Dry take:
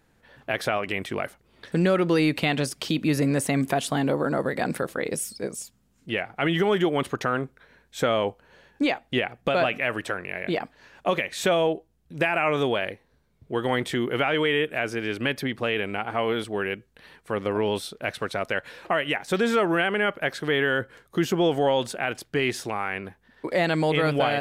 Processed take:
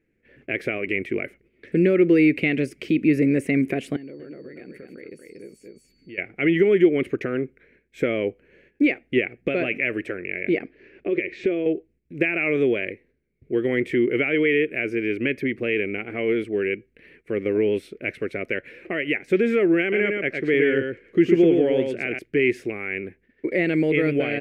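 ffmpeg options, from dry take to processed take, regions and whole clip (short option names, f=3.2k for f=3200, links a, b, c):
-filter_complex "[0:a]asettb=1/sr,asplit=3[a][b][c];[a]atrim=end=3.964[d];[b]atrim=start=3.96:end=6.18,asetpts=PTS-STARTPTS,afade=t=in:d=0.004:c=qsin,afade=t=out:st=2.216:d=0.004:c=qsin,aecho=1:1:235:0.422,atrim=end_sample=97902,acompressor=threshold=-45dB:ratio=3:attack=3.2:release=140:knee=1:detection=peak,aeval=exprs='val(0)+0.00282*sin(2*PI*4500*n/s)':c=same[e];[c]atrim=start=6.176[f];[d][e]acrossfade=d=0.004:c1=hsin:c2=qsin[g];[g][f]acrossfade=d=0.004:c1=qsin:c2=hsin,asettb=1/sr,asplit=3[h][i][j];[h]atrim=end=10.634[k];[i]atrim=start=10.63:end=11.66,asetpts=PTS-STARTPTS,afade=t=in:d=0.004:c=qsin,afade=t=out:st=1.026:d=0.004:c=qsin,lowpass=f=5.3k:w=0.5412,lowpass=f=5.3k:w=1.3066,equalizer=f=370:t=o:w=0.49:g=10,acompressor=threshold=-24dB:ratio=4:attack=3.2:release=140:knee=1:detection=peak[l];[j]atrim=start=11.656[m];[k][l]acrossfade=d=0.004:c1=hsin:c2=qsin[n];[n][m]acrossfade=d=0.004:c1=qsin:c2=hsin,asettb=1/sr,asplit=3[o][p][q];[o]atrim=end=19.814[r];[p]atrim=start=19.81:end=22.19,asetpts=PTS-STARTPTS,afade=t=in:d=0.004:c=qsin,afade=t=out:st=2.376:d=0.004:c=qsin,adynamicsmooth=sensitivity=7:basefreq=7.5k,aecho=1:1:112:0.596,atrim=end_sample=104958[s];[q]atrim=start=22.186[t];[r][s]acrossfade=d=0.004:c1=hsin:c2=qsin[u];[u][t]acrossfade=d=0.004:c1=qsin:c2=hsin,agate=range=-8dB:threshold=-55dB:ratio=16:detection=peak,firequalizer=gain_entry='entry(150,0);entry(360,10);entry(880,-19);entry(2200,9);entry(3500,-13)':delay=0.05:min_phase=1,volume=-1.5dB"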